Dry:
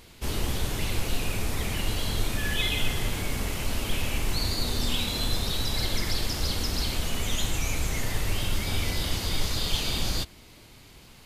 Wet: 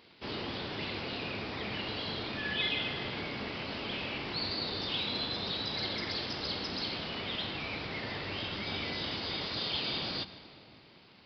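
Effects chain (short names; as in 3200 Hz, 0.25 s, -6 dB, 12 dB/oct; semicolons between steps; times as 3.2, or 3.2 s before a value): in parallel at -11 dB: bit-crush 7-bit; on the sum: notches 60/120/180/240 Hz; reverb RT60 3.1 s, pre-delay 92 ms, DRR 13.5 dB; downsampling 11025 Hz; HPF 170 Hz 12 dB/oct; gain -5.5 dB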